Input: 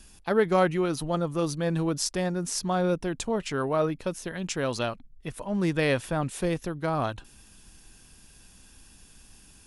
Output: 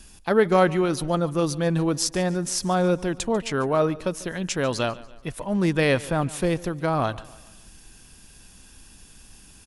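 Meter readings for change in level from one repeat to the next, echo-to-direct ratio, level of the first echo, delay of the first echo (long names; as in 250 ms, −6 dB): −6.5 dB, −19.0 dB, −20.0 dB, 144 ms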